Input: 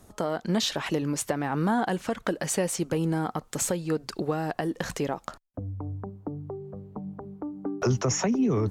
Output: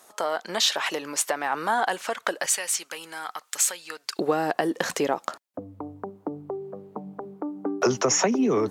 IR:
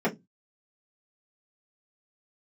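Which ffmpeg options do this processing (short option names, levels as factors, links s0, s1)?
-af "asetnsamples=n=441:p=0,asendcmd='2.46 highpass f 1500;4.19 highpass f 320',highpass=700,volume=2.11"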